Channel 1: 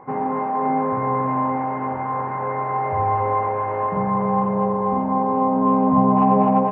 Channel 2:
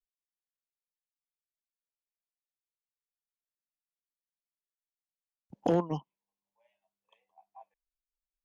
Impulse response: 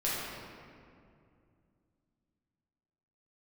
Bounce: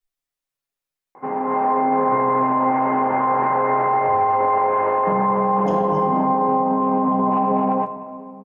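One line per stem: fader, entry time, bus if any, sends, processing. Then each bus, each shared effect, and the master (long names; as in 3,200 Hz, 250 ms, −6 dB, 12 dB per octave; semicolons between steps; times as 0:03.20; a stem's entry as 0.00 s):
−1.0 dB, 1.15 s, send −19.5 dB, high-pass filter 240 Hz 12 dB per octave; automatic gain control
+0.5 dB, 0.00 s, send −3 dB, comb filter 7.2 ms, depth 64%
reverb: on, RT60 2.4 s, pre-delay 6 ms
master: brickwall limiter −11 dBFS, peak gain reduction 9.5 dB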